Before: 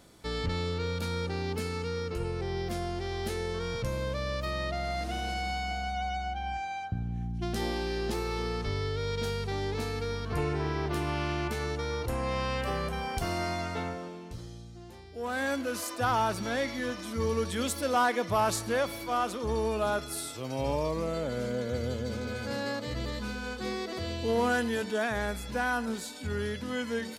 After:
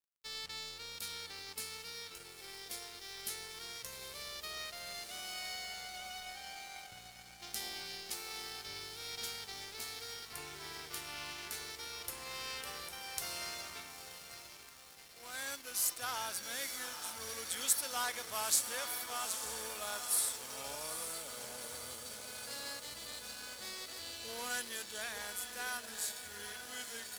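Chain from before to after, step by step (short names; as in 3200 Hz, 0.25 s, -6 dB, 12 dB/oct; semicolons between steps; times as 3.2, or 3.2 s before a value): pre-emphasis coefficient 0.97; diffused feedback echo 0.866 s, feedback 70%, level -7.5 dB; crossover distortion -54.5 dBFS; gain +5 dB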